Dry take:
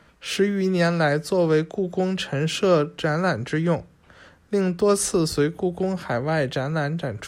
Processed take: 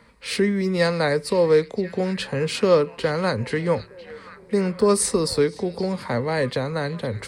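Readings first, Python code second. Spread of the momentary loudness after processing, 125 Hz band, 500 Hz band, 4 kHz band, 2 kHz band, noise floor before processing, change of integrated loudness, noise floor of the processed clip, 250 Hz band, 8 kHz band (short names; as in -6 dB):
9 LU, -2.0 dB, +1.5 dB, +0.5 dB, -1.0 dB, -55 dBFS, +0.5 dB, -46 dBFS, -1.0 dB, +1.5 dB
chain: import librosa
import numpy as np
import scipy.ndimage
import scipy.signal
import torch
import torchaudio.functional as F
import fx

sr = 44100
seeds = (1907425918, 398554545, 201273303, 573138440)

y = fx.ripple_eq(x, sr, per_octave=0.94, db=9)
y = fx.echo_stepped(y, sr, ms=517, hz=3500.0, octaves=-0.7, feedback_pct=70, wet_db=-11.5)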